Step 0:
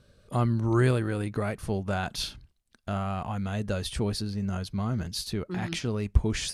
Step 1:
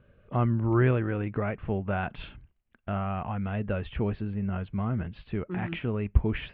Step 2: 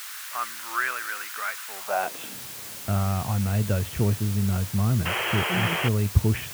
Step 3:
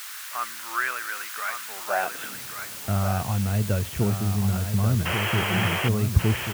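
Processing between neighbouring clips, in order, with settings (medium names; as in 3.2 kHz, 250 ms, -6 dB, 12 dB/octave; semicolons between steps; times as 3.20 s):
steep low-pass 2.9 kHz 48 dB/octave
added noise white -40 dBFS; high-pass sweep 1.4 kHz -> 100 Hz, 1.71–2.54 s; painted sound noise, 5.05–5.89 s, 330–3300 Hz -29 dBFS; trim +1.5 dB
delay 1136 ms -7 dB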